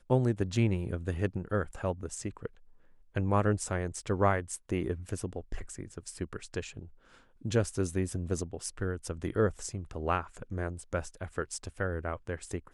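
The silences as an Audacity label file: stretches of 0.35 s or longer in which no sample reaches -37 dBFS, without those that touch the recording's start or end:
2.470000	3.160000	silence
6.840000	7.450000	silence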